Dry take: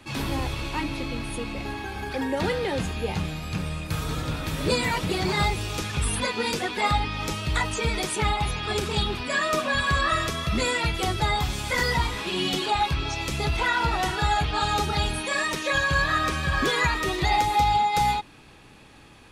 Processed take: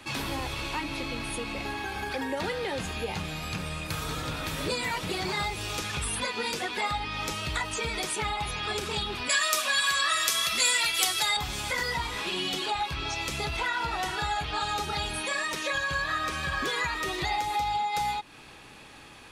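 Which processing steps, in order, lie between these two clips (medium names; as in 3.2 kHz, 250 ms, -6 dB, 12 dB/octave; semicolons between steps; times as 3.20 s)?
bass shelf 380 Hz -8 dB; compression 2.5:1, threshold -35 dBFS, peak gain reduction 11 dB; 9.29–11.37 s: tilt EQ +4.5 dB/octave; trim +4 dB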